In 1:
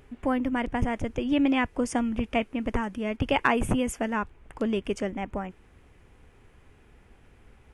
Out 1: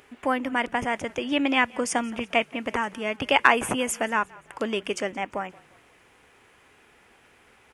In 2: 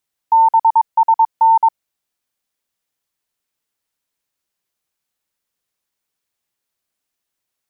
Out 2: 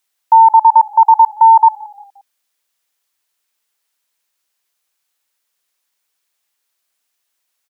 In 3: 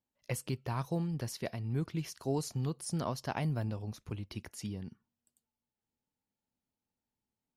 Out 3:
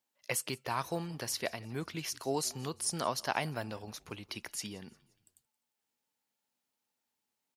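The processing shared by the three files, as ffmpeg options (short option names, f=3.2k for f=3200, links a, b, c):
-filter_complex "[0:a]highpass=f=900:p=1,asplit=2[a][b];[b]asplit=3[c][d][e];[c]adelay=175,afreqshift=-34,volume=-23.5dB[f];[d]adelay=350,afreqshift=-68,volume=-30.4dB[g];[e]adelay=525,afreqshift=-102,volume=-37.4dB[h];[f][g][h]amix=inputs=3:normalize=0[i];[a][i]amix=inputs=2:normalize=0,volume=8dB"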